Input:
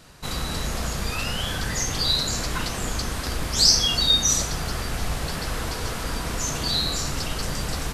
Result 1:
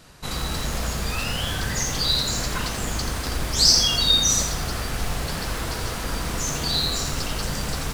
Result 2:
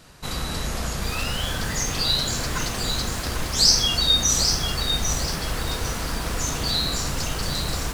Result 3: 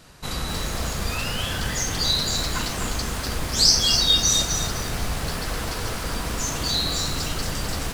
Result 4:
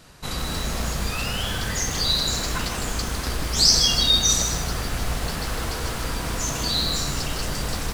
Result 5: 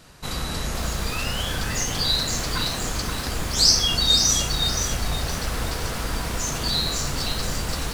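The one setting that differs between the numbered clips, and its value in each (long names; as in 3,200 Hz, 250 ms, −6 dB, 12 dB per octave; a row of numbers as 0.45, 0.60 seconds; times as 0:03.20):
feedback echo at a low word length, delay time: 84, 797, 253, 156, 521 milliseconds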